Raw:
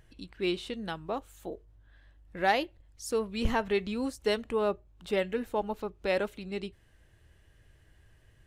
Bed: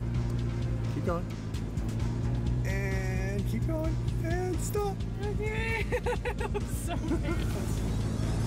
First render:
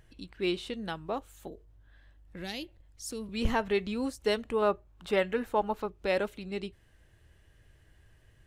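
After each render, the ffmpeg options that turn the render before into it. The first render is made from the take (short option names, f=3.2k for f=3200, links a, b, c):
-filter_complex "[0:a]asettb=1/sr,asplit=3[a][b][c];[a]atrim=end=1.474[d];[b]atrim=start=1.47:end=3.29,asetpts=PTS-STARTPTS,afade=t=in:d=0.004:c=qsin,afade=t=out:st=1.816:d=0.004:c=qsin,acrossover=split=290|3000[e][f][g];[f]acompressor=threshold=-47dB:ratio=6:attack=3.2:release=140:knee=2.83:detection=peak[h];[e][h][g]amix=inputs=3:normalize=0[i];[c]atrim=start=3.286[j];[d][i]acrossfade=d=0.004:c1=hsin:c2=qsin[k];[k][j]acrossfade=d=0.004:c1=qsin:c2=hsin,asettb=1/sr,asplit=3[l][m][n];[l]atrim=end=4.624[o];[m]atrim=start=4.62:end=5.86,asetpts=PTS-STARTPTS,afade=t=in:d=0.004:c=qsin,afade=t=out:st=1.236:d=0.004:c=qsin,equalizer=f=1.2k:t=o:w=1.6:g=6[p];[n]atrim=start=5.856[q];[o][p]acrossfade=d=0.004:c1=hsin:c2=qsin[r];[r][q]acrossfade=d=0.004:c1=qsin:c2=hsin"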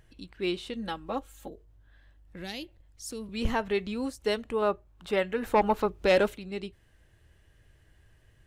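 -filter_complex "[0:a]asettb=1/sr,asplit=3[a][b][c];[a]atrim=end=0.754[d];[b]atrim=start=0.75:end=1.49,asetpts=PTS-STARTPTS,afade=t=in:d=0.004:c=qsin,afade=t=out:st=0.736:d=0.004:c=qsin,aecho=1:1:3.7:0.7,atrim=end_sample=32634[e];[c]atrim=start=1.486[f];[d][e]acrossfade=d=0.004:c1=hsin:c2=qsin[g];[g][f]acrossfade=d=0.004:c1=qsin:c2=hsin,asplit=3[h][i][j];[h]afade=t=out:st=5.42:d=0.02[k];[i]aeval=exprs='0.178*sin(PI/2*1.58*val(0)/0.178)':c=same,afade=t=in:st=5.42:d=0.02,afade=t=out:st=6.34:d=0.02[l];[j]afade=t=in:st=6.34:d=0.02[m];[k][l][m]amix=inputs=3:normalize=0"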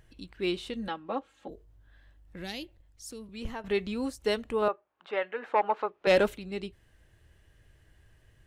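-filter_complex "[0:a]asettb=1/sr,asplit=3[a][b][c];[a]atrim=end=0.884[d];[b]atrim=start=0.88:end=1.49,asetpts=PTS-STARTPTS,afade=t=in:d=0.004:c=qsin,afade=t=out:st=0.606:d=0.004:c=qsin,highpass=190,lowpass=3.3k[e];[c]atrim=start=1.486[f];[d][e]acrossfade=d=0.004:c1=hsin:c2=qsin[g];[g][f]acrossfade=d=0.004:c1=qsin:c2=hsin,asettb=1/sr,asplit=3[h][i][j];[h]atrim=end=4.684[k];[i]atrim=start=4.68:end=6.07,asetpts=PTS-STARTPTS,afade=t=in:d=0.004:c=qsin,afade=t=out:st=1.386:d=0.004:c=qsin,highpass=560,lowpass=2.4k[l];[j]atrim=start=6.066[m];[k][l]acrossfade=d=0.004:c1=hsin:c2=qsin[n];[n][m]acrossfade=d=0.004:c1=qsin:c2=hsin,asplit=2[o][p];[o]atrim=end=3.64,asetpts=PTS-STARTPTS,afade=t=out:st=2.52:d=1.12:silence=0.251189[q];[p]atrim=start=3.64,asetpts=PTS-STARTPTS,afade=t=in:d=0.004:c=hsin:silence=0.251189[r];[q][r]concat=n=2:v=0:a=1"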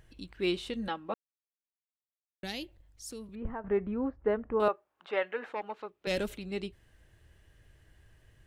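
-filter_complex "[0:a]asettb=1/sr,asplit=3[a][b][c];[a]atrim=end=3.354[d];[b]atrim=start=3.35:end=4.6,asetpts=PTS-STARTPTS,afade=t=in:d=0.004:c=qsin,afade=t=out:st=1.246:d=0.004:c=qsin,lowpass=f=1.6k:w=0.5412,lowpass=f=1.6k:w=1.3066[e];[c]atrim=start=4.596[f];[d][e]acrossfade=d=0.004:c1=hsin:c2=qsin[g];[g][f]acrossfade=d=0.004:c1=qsin:c2=hsin,asplit=3[h][i][j];[h]afade=t=out:st=5.51:d=0.02[k];[i]equalizer=f=910:w=0.38:g=-13,afade=t=in:st=5.51:d=0.02,afade=t=out:st=6.29:d=0.02[l];[j]afade=t=in:st=6.29:d=0.02[m];[k][l][m]amix=inputs=3:normalize=0,asplit=3[n][o][p];[n]atrim=end=1.14,asetpts=PTS-STARTPTS,afade=t=out:st=1.136:d=0.004:c=hsin[q];[o]atrim=start=1.14:end=2.43,asetpts=PTS-STARTPTS,volume=0[r];[p]atrim=start=2.43,asetpts=PTS-STARTPTS,afade=t=in:d=0.004:c=hsin[s];[q][r][s]concat=n=3:v=0:a=1"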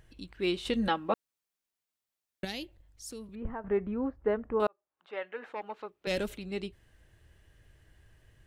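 -filter_complex "[0:a]asettb=1/sr,asplit=3[a][b][c];[a]atrim=end=0.654[d];[b]atrim=start=0.65:end=2.45,asetpts=PTS-STARTPTS,afade=t=in:d=0.004:c=qsin,afade=t=out:st=1.796:d=0.004:c=qsin,acontrast=66[e];[c]atrim=start=2.446[f];[d][e]acrossfade=d=0.004:c1=hsin:c2=qsin[g];[g][f]acrossfade=d=0.004:c1=qsin:c2=hsin,asplit=2[h][i];[h]atrim=end=4.67,asetpts=PTS-STARTPTS,afade=t=out:st=4.666:d=0.004:c=hsin[j];[i]atrim=start=4.67,asetpts=PTS-STARTPTS,afade=t=in:d=1.15[k];[j][k]concat=n=2:v=0:a=1"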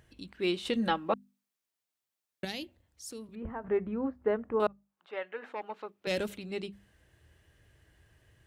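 -af "highpass=58,bandreject=f=50:t=h:w=6,bandreject=f=100:t=h:w=6,bandreject=f=150:t=h:w=6,bandreject=f=200:t=h:w=6,bandreject=f=250:t=h:w=6"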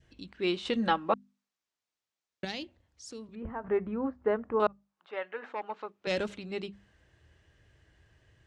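-af "adynamicequalizer=threshold=0.00562:dfrequency=1100:dqfactor=1.1:tfrequency=1100:tqfactor=1.1:attack=5:release=100:ratio=0.375:range=2:mode=boostabove:tftype=bell,lowpass=f=7.3k:w=0.5412,lowpass=f=7.3k:w=1.3066"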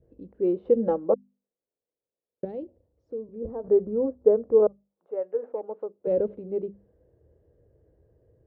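-af "lowpass=f=490:t=q:w=4.9"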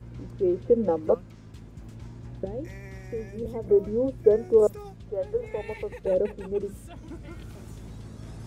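-filter_complex "[1:a]volume=-11dB[a];[0:a][a]amix=inputs=2:normalize=0"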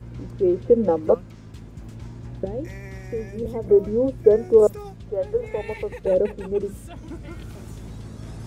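-af "volume=4.5dB,alimiter=limit=-3dB:level=0:latency=1"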